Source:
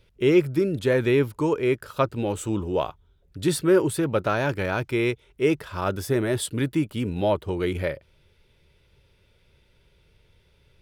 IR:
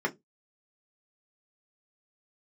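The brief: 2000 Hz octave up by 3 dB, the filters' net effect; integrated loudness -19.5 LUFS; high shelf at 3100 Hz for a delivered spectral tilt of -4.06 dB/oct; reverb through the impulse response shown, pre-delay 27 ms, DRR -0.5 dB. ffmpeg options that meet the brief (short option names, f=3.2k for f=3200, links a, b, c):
-filter_complex "[0:a]equalizer=f=2k:t=o:g=5.5,highshelf=f=3.1k:g=-5,asplit=2[a][b];[1:a]atrim=start_sample=2205,adelay=27[c];[b][c]afir=irnorm=-1:irlink=0,volume=-8.5dB[d];[a][d]amix=inputs=2:normalize=0,volume=-0.5dB"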